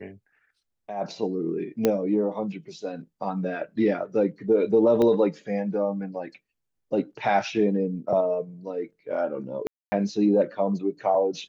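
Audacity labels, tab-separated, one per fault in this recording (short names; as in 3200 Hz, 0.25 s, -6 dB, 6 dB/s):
1.850000	1.850000	pop -8 dBFS
5.020000	5.020000	pop -14 dBFS
9.670000	9.920000	gap 0.25 s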